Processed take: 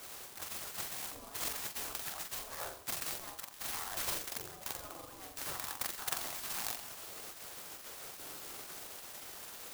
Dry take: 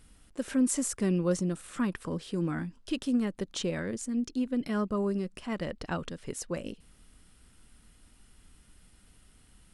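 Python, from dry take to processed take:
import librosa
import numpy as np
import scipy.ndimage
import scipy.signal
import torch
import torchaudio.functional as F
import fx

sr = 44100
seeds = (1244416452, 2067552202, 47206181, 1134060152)

y = fx.cvsd(x, sr, bps=64000)
y = fx.over_compress(y, sr, threshold_db=-38.0, ratio=-1.0)
y = fx.peak_eq(y, sr, hz=3000.0, db=-9.0, octaves=1.8)
y = fx.room_flutter(y, sr, wall_m=7.5, rt60_s=0.46)
y = fx.spec_gate(y, sr, threshold_db=-25, keep='weak')
y = fx.low_shelf(y, sr, hz=470.0, db=-5.5)
y = fx.notch(y, sr, hz=930.0, q=22.0)
y = fx.doubler(y, sr, ms=44.0, db=-7)
y = fx.clock_jitter(y, sr, seeds[0], jitter_ms=0.11)
y = y * 10.0 ** (13.5 / 20.0)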